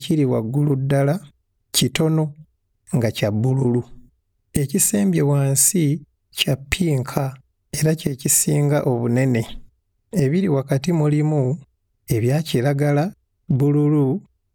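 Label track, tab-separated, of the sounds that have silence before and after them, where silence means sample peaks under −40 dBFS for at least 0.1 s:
1.740000	2.420000	sound
2.870000	4.010000	sound
4.550000	6.030000	sound
6.340000	7.360000	sound
7.730000	9.650000	sound
10.130000	11.630000	sound
12.080000	13.130000	sound
13.490000	14.240000	sound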